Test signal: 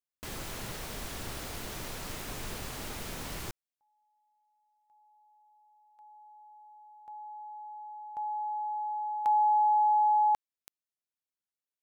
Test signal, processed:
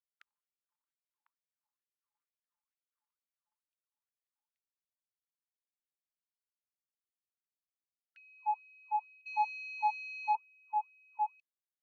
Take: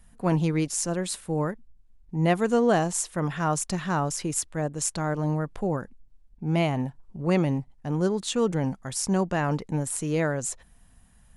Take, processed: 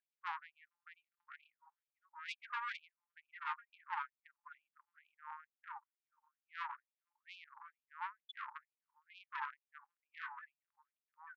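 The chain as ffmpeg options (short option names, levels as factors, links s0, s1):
-filter_complex "[0:a]aemphasis=mode=reproduction:type=bsi,afftfilt=real='re*gte(hypot(re,im),0.158)':imag='im*gte(hypot(re,im),0.158)':win_size=1024:overlap=0.75,adynamicequalizer=threshold=0.00251:dfrequency=3600:dqfactor=1.4:tfrequency=3600:tqfactor=1.4:attack=5:release=100:ratio=0.4:range=2:mode=cutabove:tftype=bell,aecho=1:1:5.8:0.69,acrossover=split=4000[s0][s1];[s0]acompressor=mode=upward:threshold=0.0398:ratio=2.5:attack=16:release=71:knee=2.83:detection=peak[s2];[s2][s1]amix=inputs=2:normalize=0,asplit=2[s3][s4];[s4]adelay=1050,volume=0.316,highshelf=f=4000:g=-23.6[s5];[s3][s5]amix=inputs=2:normalize=0,asoftclip=type=tanh:threshold=0.0891,areverse,acompressor=threshold=0.0224:ratio=5:attack=4.1:release=317:knee=1:detection=rms,areverse,afftfilt=real='re*gte(b*sr/1024,810*pow(2400/810,0.5+0.5*sin(2*PI*2.2*pts/sr)))':imag='im*gte(b*sr/1024,810*pow(2400/810,0.5+0.5*sin(2*PI*2.2*pts/sr)))':win_size=1024:overlap=0.75,volume=2.24"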